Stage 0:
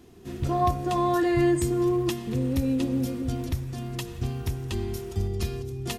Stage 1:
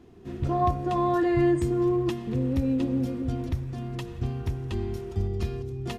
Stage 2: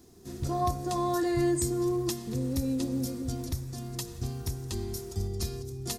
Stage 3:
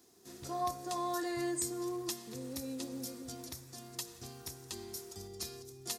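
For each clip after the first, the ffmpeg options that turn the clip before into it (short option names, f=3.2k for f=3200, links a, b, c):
-af "lowpass=f=2k:p=1"
-af "aexciter=amount=6.8:drive=6.6:freq=4.2k,volume=-4.5dB"
-af "highpass=f=680:p=1,volume=-3dB"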